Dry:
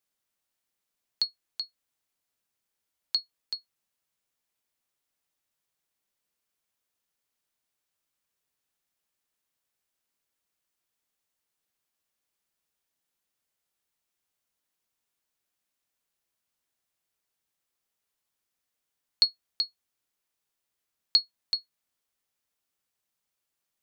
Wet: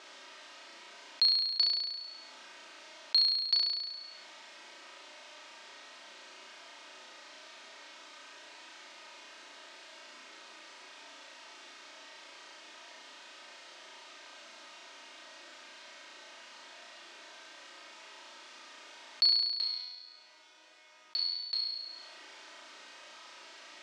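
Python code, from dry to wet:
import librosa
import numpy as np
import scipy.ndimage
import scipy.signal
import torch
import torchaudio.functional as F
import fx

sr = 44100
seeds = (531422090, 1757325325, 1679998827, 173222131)

y = x + 0.84 * np.pad(x, (int(3.2 * sr / 1000.0), 0))[:len(x)]
y = fx.vibrato(y, sr, rate_hz=8.8, depth_cents=36.0)
y = 10.0 ** (-17.5 / 20.0) * np.tanh(y / 10.0 ** (-17.5 / 20.0))
y = fx.resonator_bank(y, sr, root=44, chord='minor', decay_s=0.51, at=(19.27, 21.59), fade=0.02)
y = np.clip(y, -10.0 ** (-22.5 / 20.0), 10.0 ** (-22.5 / 20.0))
y = fx.bandpass_edges(y, sr, low_hz=420.0, high_hz=7000.0)
y = fx.air_absorb(y, sr, metres=130.0)
y = fx.room_flutter(y, sr, wall_m=5.9, rt60_s=0.71)
y = fx.env_flatten(y, sr, amount_pct=50)
y = F.gain(torch.from_numpy(y), 6.0).numpy()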